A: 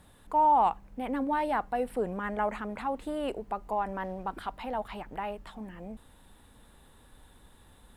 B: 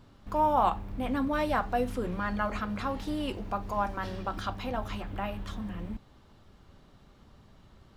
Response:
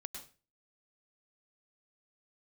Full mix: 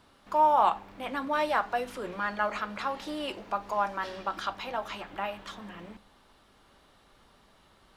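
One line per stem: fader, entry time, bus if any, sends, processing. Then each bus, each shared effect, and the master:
-13.5 dB, 0.00 s, send -3.5 dB, none
+2.0 dB, 0.00 s, no send, frequency weighting A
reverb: on, RT60 0.35 s, pre-delay 95 ms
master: none

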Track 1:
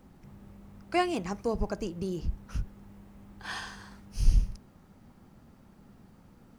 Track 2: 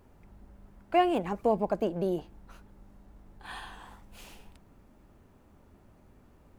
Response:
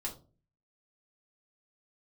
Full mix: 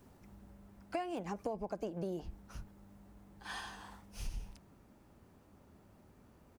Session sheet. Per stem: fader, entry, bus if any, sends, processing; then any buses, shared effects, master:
-6.0 dB, 0.00 s, no send, tone controls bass -1 dB, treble +8 dB; auto duck -8 dB, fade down 0.55 s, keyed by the second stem
-3.0 dB, 7.7 ms, polarity flipped, no send, high-pass 60 Hz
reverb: none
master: compression 8:1, threshold -35 dBFS, peak gain reduction 13.5 dB

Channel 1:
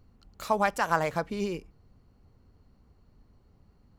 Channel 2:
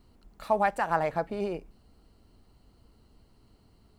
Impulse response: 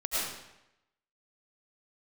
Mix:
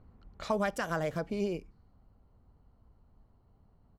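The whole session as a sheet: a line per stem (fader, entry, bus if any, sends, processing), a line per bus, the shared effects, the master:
+2.0 dB, 0.00 s, no send, band-stop 2.7 kHz, Q 17; compression 1.5:1, threshold -32 dBFS, peak gain reduction 5 dB; auto duck -8 dB, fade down 1.70 s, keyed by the second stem
-4.5 dB, 0.5 ms, no send, Bessel low-pass 6.3 kHz; touch-sensitive phaser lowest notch 320 Hz, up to 1.8 kHz, full sweep at -26 dBFS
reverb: none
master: level-controlled noise filter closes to 1.8 kHz, open at -32 dBFS

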